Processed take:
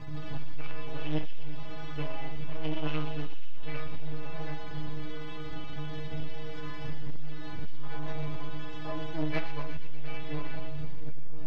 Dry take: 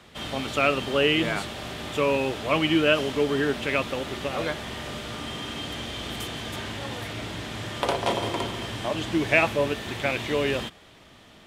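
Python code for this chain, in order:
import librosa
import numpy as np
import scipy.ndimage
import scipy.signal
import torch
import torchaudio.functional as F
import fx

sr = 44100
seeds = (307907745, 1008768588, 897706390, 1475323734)

p1 = fx.dmg_wind(x, sr, seeds[0], corner_hz=120.0, level_db=-24.0)
p2 = fx.sample_hold(p1, sr, seeds[1], rate_hz=1200.0, jitter_pct=0)
p3 = p1 + F.gain(torch.from_numpy(p2), -7.0).numpy()
p4 = fx.dmg_noise_colour(p3, sr, seeds[2], colour='pink', level_db=-38.0)
p5 = np.maximum(p4, 0.0)
p6 = fx.stiff_resonator(p5, sr, f0_hz=150.0, decay_s=0.58, stiffness=0.008)
p7 = 10.0 ** (-30.0 / 20.0) * np.tanh(p6 / 10.0 ** (-30.0 / 20.0))
p8 = fx.air_absorb(p7, sr, metres=250.0)
p9 = p8 + fx.echo_wet_highpass(p8, sr, ms=120, feedback_pct=73, hz=2800.0, wet_db=-5.5, dry=0)
y = F.gain(torch.from_numpy(p9), 11.0).numpy()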